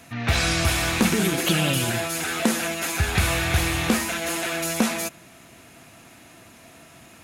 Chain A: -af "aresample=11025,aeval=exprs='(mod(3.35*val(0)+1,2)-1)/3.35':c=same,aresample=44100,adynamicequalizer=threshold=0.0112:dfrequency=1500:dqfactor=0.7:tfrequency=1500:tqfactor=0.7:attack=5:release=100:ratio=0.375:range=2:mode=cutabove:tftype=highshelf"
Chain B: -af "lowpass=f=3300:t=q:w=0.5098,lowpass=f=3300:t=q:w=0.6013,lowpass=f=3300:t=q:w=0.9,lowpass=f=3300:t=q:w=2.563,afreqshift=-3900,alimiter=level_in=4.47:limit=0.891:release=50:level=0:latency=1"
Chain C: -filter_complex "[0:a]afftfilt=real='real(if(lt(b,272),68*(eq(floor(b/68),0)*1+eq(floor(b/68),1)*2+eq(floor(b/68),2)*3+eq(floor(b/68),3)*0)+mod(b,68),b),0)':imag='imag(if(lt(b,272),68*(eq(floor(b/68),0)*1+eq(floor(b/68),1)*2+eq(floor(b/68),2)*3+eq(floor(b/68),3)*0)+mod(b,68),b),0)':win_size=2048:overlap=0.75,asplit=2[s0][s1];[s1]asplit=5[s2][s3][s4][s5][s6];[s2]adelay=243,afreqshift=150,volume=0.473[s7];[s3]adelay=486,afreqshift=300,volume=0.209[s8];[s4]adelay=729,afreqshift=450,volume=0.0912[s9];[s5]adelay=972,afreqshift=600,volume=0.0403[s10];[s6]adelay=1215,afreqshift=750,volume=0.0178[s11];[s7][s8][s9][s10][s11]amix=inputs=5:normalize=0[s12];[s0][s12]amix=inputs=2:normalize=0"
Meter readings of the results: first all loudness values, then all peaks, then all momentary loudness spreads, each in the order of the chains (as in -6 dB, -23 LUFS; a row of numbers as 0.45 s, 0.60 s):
-25.0 LUFS, -9.5 LUFS, -19.5 LUFS; -8.5 dBFS, -1.0 dBFS, -5.5 dBFS; 7 LU, 5 LU, 8 LU